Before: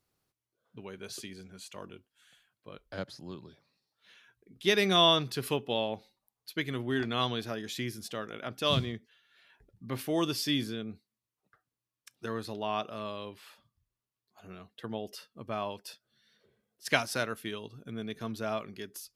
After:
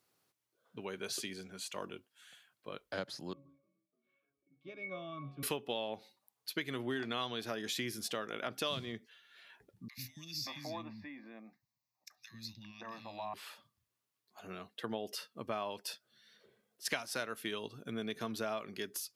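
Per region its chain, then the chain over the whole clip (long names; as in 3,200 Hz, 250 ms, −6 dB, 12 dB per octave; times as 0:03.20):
0:03.33–0:05.43: high-shelf EQ 6,900 Hz −5.5 dB + resonances in every octave C#, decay 0.3 s + echo with shifted repeats 296 ms, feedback 60%, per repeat +47 Hz, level −21 dB
0:09.88–0:13.34: phaser with its sweep stopped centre 2,100 Hz, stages 8 + downward compressor 4 to 1, threshold −41 dBFS + three-band delay without the direct sound highs, lows, mids 90/570 ms, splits 250/2,100 Hz
whole clip: high-pass filter 96 Hz; low-shelf EQ 190 Hz −9.5 dB; downward compressor 6 to 1, threshold −38 dBFS; level +4 dB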